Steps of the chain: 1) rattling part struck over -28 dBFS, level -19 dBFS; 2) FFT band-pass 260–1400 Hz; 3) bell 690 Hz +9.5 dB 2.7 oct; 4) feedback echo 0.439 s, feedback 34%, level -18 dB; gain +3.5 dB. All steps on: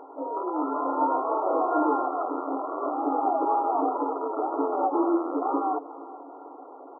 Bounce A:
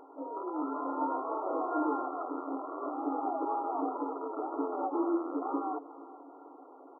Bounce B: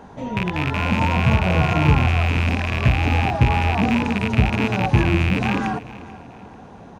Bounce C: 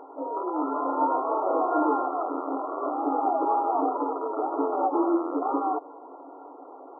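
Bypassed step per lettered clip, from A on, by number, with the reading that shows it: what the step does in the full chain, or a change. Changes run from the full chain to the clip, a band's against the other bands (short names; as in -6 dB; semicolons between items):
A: 3, loudness change -7.5 LU; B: 2, momentary loudness spread change -9 LU; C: 4, momentary loudness spread change +3 LU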